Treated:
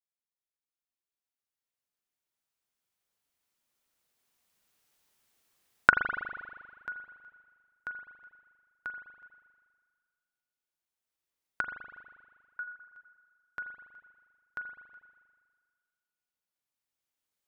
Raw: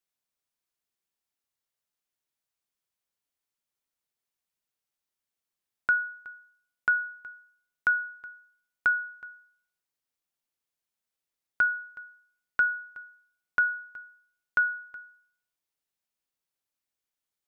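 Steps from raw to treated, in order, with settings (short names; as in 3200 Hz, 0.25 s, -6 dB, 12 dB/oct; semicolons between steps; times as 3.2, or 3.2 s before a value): 12–12.61 formant sharpening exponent 1.5; recorder AGC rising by 6.1 dB/s; spring tank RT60 1.8 s, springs 40 ms, chirp 65 ms, DRR 5.5 dB; gain -15.5 dB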